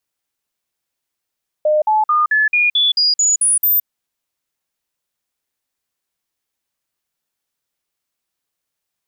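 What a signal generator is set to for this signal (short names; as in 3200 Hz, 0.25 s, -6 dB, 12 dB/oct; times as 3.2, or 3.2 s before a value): stepped sine 609 Hz up, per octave 2, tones 10, 0.17 s, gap 0.05 s -11 dBFS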